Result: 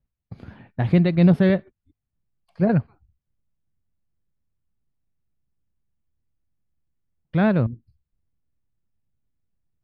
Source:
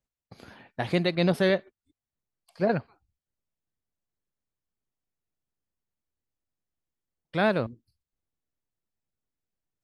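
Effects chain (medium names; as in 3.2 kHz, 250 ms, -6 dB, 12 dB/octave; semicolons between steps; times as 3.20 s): tone controls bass +15 dB, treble -14 dB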